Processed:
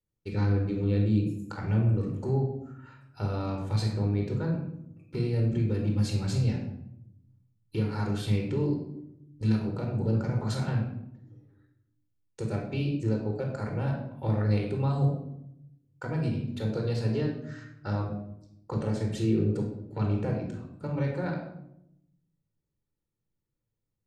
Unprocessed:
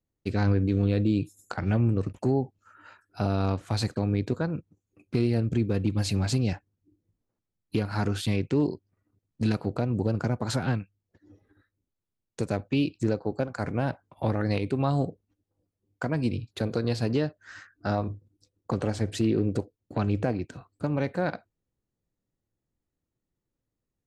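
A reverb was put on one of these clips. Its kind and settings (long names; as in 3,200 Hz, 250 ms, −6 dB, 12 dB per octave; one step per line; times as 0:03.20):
rectangular room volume 1,900 cubic metres, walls furnished, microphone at 4.4 metres
level −9 dB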